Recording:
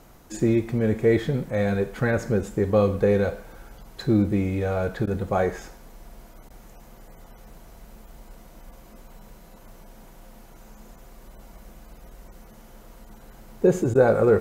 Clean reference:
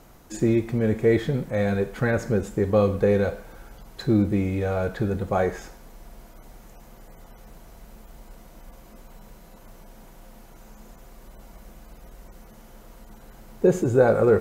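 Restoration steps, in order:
repair the gap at 0:05.06/0:06.49/0:13.94, 11 ms

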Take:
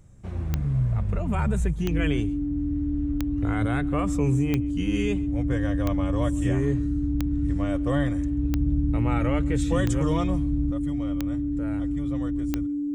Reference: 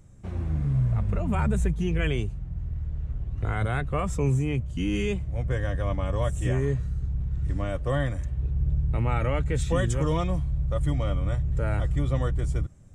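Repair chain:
click removal
notch filter 290 Hz, Q 30
echo removal 136 ms −23 dB
level 0 dB, from 0:10.71 +8 dB

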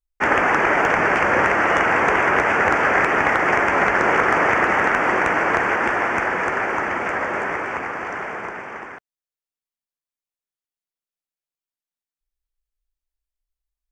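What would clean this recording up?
clipped peaks rebuilt −5.5 dBFS

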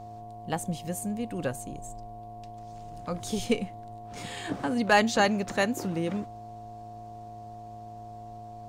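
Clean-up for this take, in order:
hum removal 109.6 Hz, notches 10
notch filter 710 Hz, Q 30

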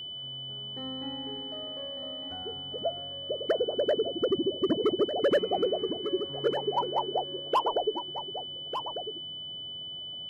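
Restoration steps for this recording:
notch filter 3,000 Hz, Q 30
echo removal 1,199 ms −9 dB

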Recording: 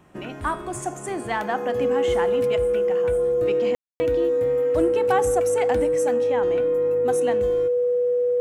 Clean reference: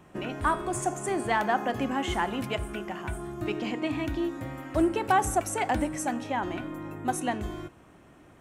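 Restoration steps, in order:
notch filter 490 Hz, Q 30
ambience match 0:03.75–0:04.00

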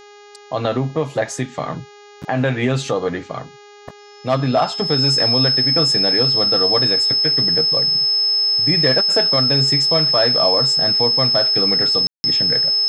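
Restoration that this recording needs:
hum removal 411.2 Hz, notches 17
notch filter 5,200 Hz, Q 30
ambience match 0:12.07–0:12.24

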